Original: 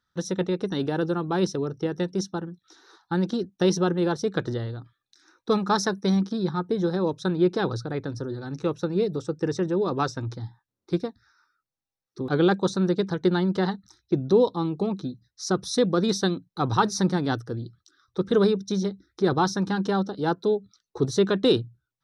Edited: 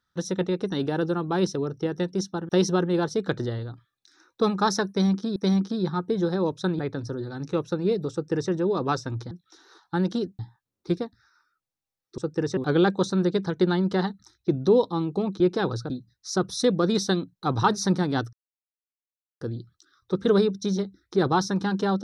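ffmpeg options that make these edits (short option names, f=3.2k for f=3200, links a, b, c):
-filter_complex "[0:a]asplit=11[a][b][c][d][e][f][g][h][i][j][k];[a]atrim=end=2.492[l];[b]atrim=start=3.568:end=6.442[m];[c]atrim=start=5.968:end=7.402[n];[d]atrim=start=7.898:end=10.422[o];[e]atrim=start=2.488:end=3.572[p];[f]atrim=start=10.418:end=12.212[q];[g]atrim=start=9.228:end=9.622[r];[h]atrim=start=12.208:end=15.042[s];[i]atrim=start=7.398:end=7.902[t];[j]atrim=start=15.038:end=17.47,asetpts=PTS-STARTPTS,afade=t=out:st=2.428:d=0.004:c=hsin,apad=pad_dur=1.08[u];[k]atrim=start=17.47,asetpts=PTS-STARTPTS,afade=t=in:d=0.004:c=hsin[v];[l][m]acrossfade=d=0.004:c1=hsin:c2=hsin[w];[w][n]acrossfade=d=0.004:c1=hsin:c2=hsin[x];[x][o]acrossfade=d=0.004:c1=hsin:c2=hsin[y];[y][p]acrossfade=d=0.004:c1=hsin:c2=hsin[z];[z][q]acrossfade=d=0.004:c1=hsin:c2=hsin[aa];[aa][r]acrossfade=d=0.004:c1=hsin:c2=hsin[ab];[ab][s]acrossfade=d=0.004:c1=hsin:c2=hsin[ac];[ac][t]acrossfade=d=0.004:c1=hsin:c2=hsin[ad];[u][v]concat=n=2:v=0:a=1[ae];[ad][ae]acrossfade=d=0.004:c1=hsin:c2=hsin"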